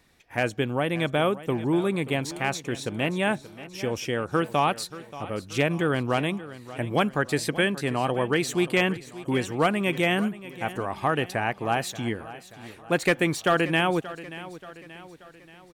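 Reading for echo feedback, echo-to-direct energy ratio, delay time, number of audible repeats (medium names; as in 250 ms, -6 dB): 50%, -15.0 dB, 581 ms, 4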